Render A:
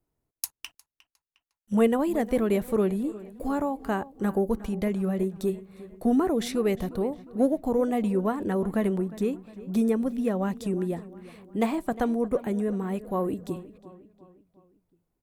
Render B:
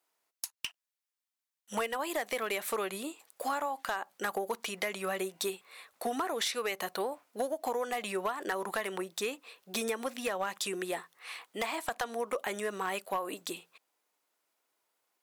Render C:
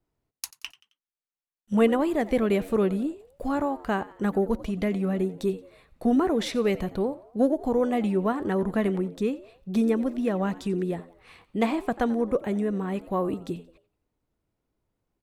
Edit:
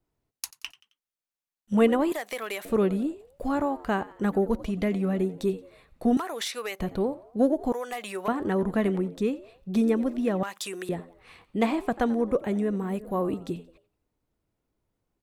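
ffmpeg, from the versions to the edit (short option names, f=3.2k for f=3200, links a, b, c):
-filter_complex "[1:a]asplit=4[a][b][c][d];[2:a]asplit=6[e][f][g][h][i][j];[e]atrim=end=2.122[k];[a]atrim=start=2.118:end=2.652[l];[f]atrim=start=2.648:end=6.172[m];[b]atrim=start=6.168:end=6.802[n];[g]atrim=start=6.798:end=7.722[o];[c]atrim=start=7.718:end=8.282[p];[h]atrim=start=8.278:end=10.432[q];[d]atrim=start=10.428:end=10.892[r];[i]atrim=start=10.888:end=12.762[s];[0:a]atrim=start=12.758:end=13.212[t];[j]atrim=start=13.208[u];[k][l]acrossfade=d=0.004:c1=hsin:c2=hsin[v];[v][m]acrossfade=d=0.004:c1=hsin:c2=hsin[w];[w][n]acrossfade=d=0.004:c1=hsin:c2=hsin[x];[x][o]acrossfade=d=0.004:c1=hsin:c2=hsin[y];[y][p]acrossfade=d=0.004:c1=hsin:c2=hsin[z];[z][q]acrossfade=d=0.004:c1=hsin:c2=hsin[aa];[aa][r]acrossfade=d=0.004:c1=hsin:c2=hsin[ab];[ab][s]acrossfade=d=0.004:c1=hsin:c2=hsin[ac];[ac][t]acrossfade=d=0.004:c1=hsin:c2=hsin[ad];[ad][u]acrossfade=d=0.004:c1=hsin:c2=hsin"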